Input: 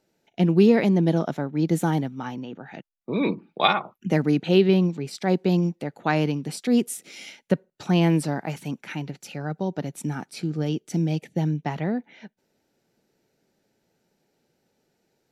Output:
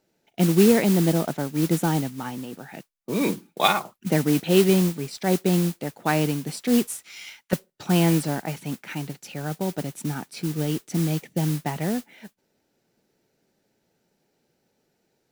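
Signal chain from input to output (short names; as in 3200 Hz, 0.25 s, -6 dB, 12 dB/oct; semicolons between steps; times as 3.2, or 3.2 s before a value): 6.87–7.53 resonant low shelf 710 Hz -13 dB, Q 1.5; modulation noise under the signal 14 dB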